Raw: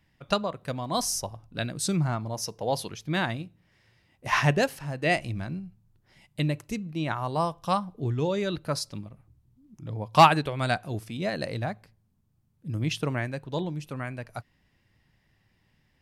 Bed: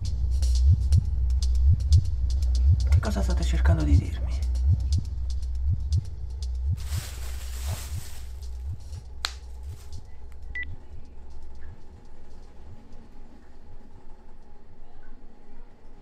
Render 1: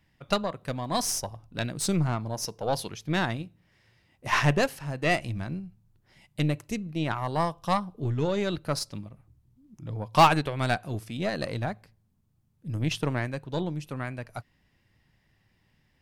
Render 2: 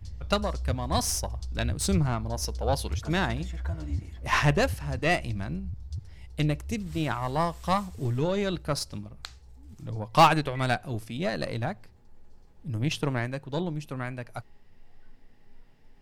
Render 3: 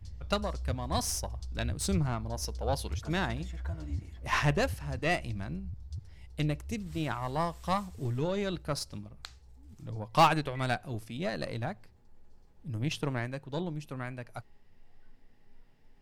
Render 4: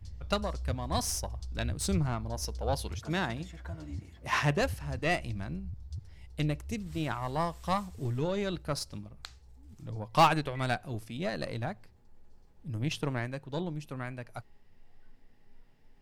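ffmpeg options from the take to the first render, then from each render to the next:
-af "aeval=exprs='0.501*(cos(1*acos(clip(val(0)/0.501,-1,1)))-cos(1*PI/2))+0.0316*(cos(8*acos(clip(val(0)/0.501,-1,1)))-cos(8*PI/2))':c=same,asoftclip=type=tanh:threshold=0.376"
-filter_complex "[1:a]volume=0.266[s0];[0:a][s0]amix=inputs=2:normalize=0"
-af "volume=0.596"
-filter_complex "[0:a]asettb=1/sr,asplit=3[s0][s1][s2];[s0]atrim=end=2.924[s3];[s1]atrim=start=2.92:end=4.61,asetpts=PTS-STARTPTS,afade=t=in:d=0.004:c=qsin,afade=t=out:st=1.686:d=0.004:c=qsin,highpass=96[s4];[s2]atrim=start=4.606[s5];[s3][s4]acrossfade=d=0.004:c1=hsin:c2=qsin[s6];[s6][s5]acrossfade=d=0.004:c1=qsin:c2=hsin"

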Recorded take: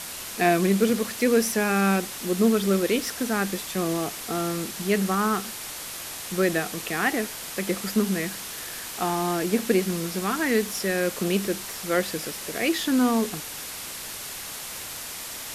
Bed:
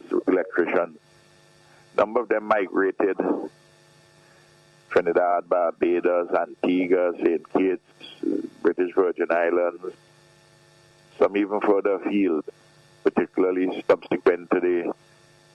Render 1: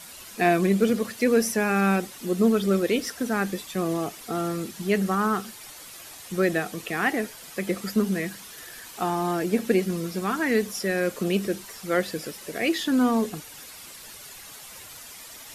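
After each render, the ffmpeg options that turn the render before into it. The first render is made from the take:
-af "afftdn=nr=10:nf=-36"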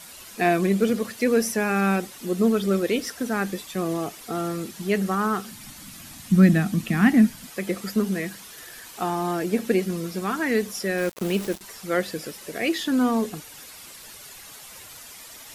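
-filter_complex "[0:a]asettb=1/sr,asplit=3[s0][s1][s2];[s0]atrim=end=5.514[s3];[s1]atrim=start=5.51:end=7.47,asetpts=PTS-STARTPTS,afade=t=in:d=0.004:c=qsin,afade=t=out:st=1.956:d=0.004:c=qsin,lowshelf=f=310:t=q:w=3:g=10.5[s4];[s2]atrim=start=7.466[s5];[s3][s4]acrossfade=d=0.004:c1=hsin:c2=qsin[s6];[s6][s5]acrossfade=d=0.004:c1=qsin:c2=hsin,asettb=1/sr,asplit=3[s7][s8][s9];[s7]atrim=end=10.984[s10];[s8]atrim=start=10.98:end=11.61,asetpts=PTS-STARTPTS,afade=t=in:d=0.004:c=qsin,afade=t=out:st=0.626:d=0.004:c=qsin,aeval=exprs='val(0)*gte(abs(val(0)),0.0237)':c=same[s11];[s9]atrim=start=11.606[s12];[s10][s11]acrossfade=d=0.004:c1=hsin:c2=qsin[s13];[s13][s12]acrossfade=d=0.004:c1=qsin:c2=hsin"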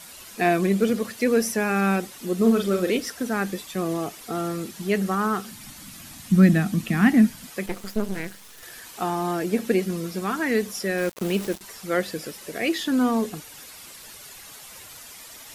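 -filter_complex "[0:a]asettb=1/sr,asplit=3[s0][s1][s2];[s0]atrim=end=2.374[s3];[s1]atrim=start=2.37:end=2.97,asetpts=PTS-STARTPTS,afade=t=in:d=0.004:c=qsin,afade=t=out:st=0.596:d=0.004:c=qsin,asplit=2[s4][s5];[s5]adelay=44,volume=0.501[s6];[s4][s6]amix=inputs=2:normalize=0,atrim=end_sample=26460[s7];[s2]atrim=start=2.966[s8];[s3][s7]acrossfade=d=0.004:c1=hsin:c2=qsin[s9];[s9][s8]acrossfade=d=0.004:c1=qsin:c2=hsin,asettb=1/sr,asplit=3[s10][s11][s12];[s10]atrim=end=7.664[s13];[s11]atrim=start=7.66:end=8.63,asetpts=PTS-STARTPTS,afade=t=in:d=0.004:c=qsin,afade=t=out:st=0.966:d=0.004:c=qsin,aeval=exprs='max(val(0),0)':c=same[s14];[s12]atrim=start=8.626[s15];[s13][s14]acrossfade=d=0.004:c1=hsin:c2=qsin[s16];[s16][s15]acrossfade=d=0.004:c1=qsin:c2=hsin"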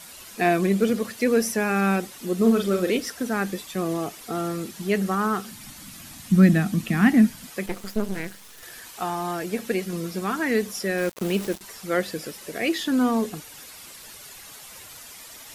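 -filter_complex "[0:a]asettb=1/sr,asplit=3[s0][s1][s2];[s0]atrim=end=8.904[s3];[s1]atrim=start=8.9:end=9.93,asetpts=PTS-STARTPTS,afade=t=in:d=0.004:c=qsin,afade=t=out:st=1.026:d=0.004:c=qsin,equalizer=f=270:w=0.79:g=-6[s4];[s2]atrim=start=9.926[s5];[s3][s4]acrossfade=d=0.004:c1=hsin:c2=qsin[s6];[s6][s5]acrossfade=d=0.004:c1=qsin:c2=hsin"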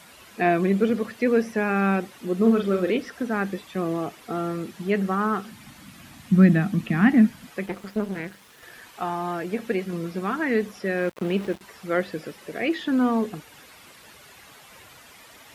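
-filter_complex "[0:a]highpass=56,acrossover=split=3300[s0][s1];[s1]acompressor=threshold=0.00224:ratio=4:attack=1:release=60[s2];[s0][s2]amix=inputs=2:normalize=0"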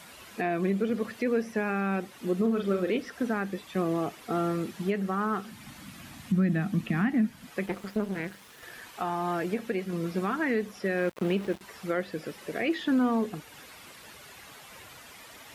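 -af "alimiter=limit=0.126:level=0:latency=1:release=414"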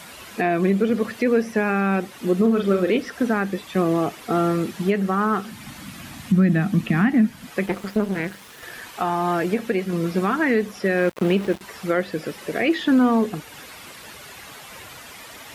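-af "volume=2.51"

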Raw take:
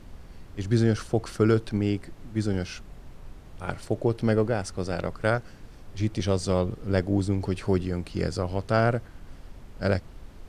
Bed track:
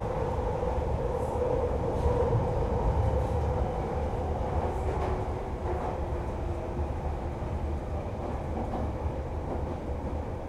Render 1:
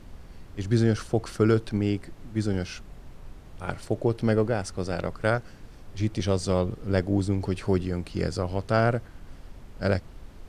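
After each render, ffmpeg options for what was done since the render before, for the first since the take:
-af anull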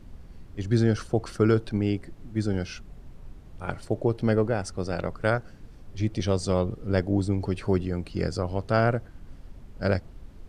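-af "afftdn=nr=6:nf=-47"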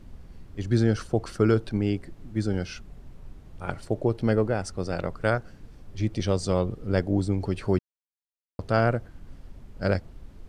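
-filter_complex "[0:a]asplit=3[s0][s1][s2];[s0]atrim=end=7.79,asetpts=PTS-STARTPTS,afade=t=out:st=7.786:d=0.004:c=hsin[s3];[s1]atrim=start=7.79:end=8.59,asetpts=PTS-STARTPTS,volume=0[s4];[s2]atrim=start=8.59,asetpts=PTS-STARTPTS,afade=t=in:d=0.004:c=hsin[s5];[s3][s4][s5]concat=n=3:v=0:a=1"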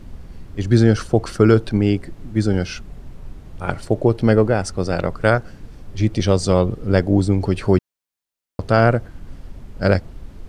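-af "volume=2.66,alimiter=limit=0.891:level=0:latency=1"

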